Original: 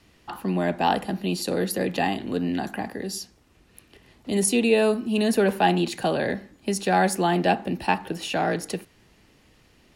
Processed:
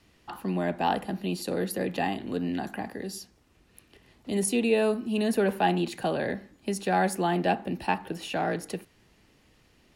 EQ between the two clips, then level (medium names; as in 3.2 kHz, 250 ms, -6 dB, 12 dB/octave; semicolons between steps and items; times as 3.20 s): dynamic bell 5.8 kHz, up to -4 dB, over -43 dBFS, Q 0.76; -4.0 dB